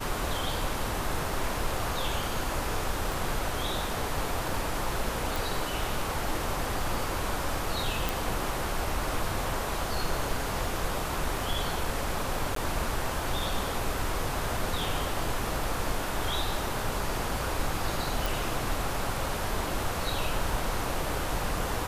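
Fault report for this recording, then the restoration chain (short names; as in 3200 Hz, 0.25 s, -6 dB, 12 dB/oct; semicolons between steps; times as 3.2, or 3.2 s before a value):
3.12 pop
5.36 pop
8.09 pop
12.55–12.56 gap 13 ms
18.26 pop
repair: de-click; interpolate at 12.55, 13 ms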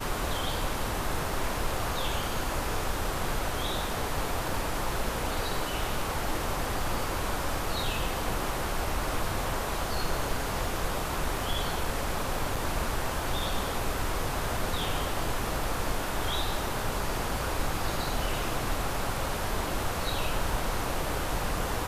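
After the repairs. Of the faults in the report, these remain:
3.12 pop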